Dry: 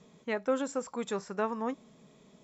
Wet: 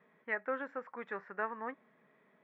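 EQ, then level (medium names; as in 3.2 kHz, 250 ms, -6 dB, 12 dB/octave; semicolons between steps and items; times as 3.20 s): high-pass 490 Hz 6 dB/octave; four-pole ladder low-pass 2 kHz, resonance 65%; +5.0 dB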